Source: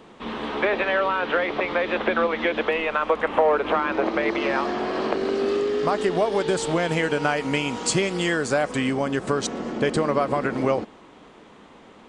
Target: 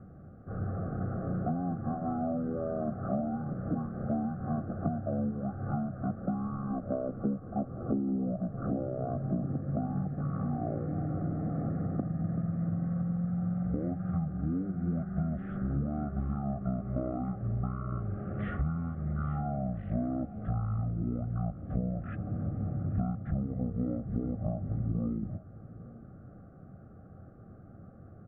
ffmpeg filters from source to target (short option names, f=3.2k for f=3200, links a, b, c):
-af "lowpass=f=2.7k:w=0.5412,lowpass=f=2.7k:w=1.3066,equalizer=f=1k:w=1.7:g=-10,acompressor=threshold=-29dB:ratio=6,aecho=1:1:363:0.126,asetrate=18846,aresample=44100,asuperstop=centerf=950:order=8:qfactor=2.7"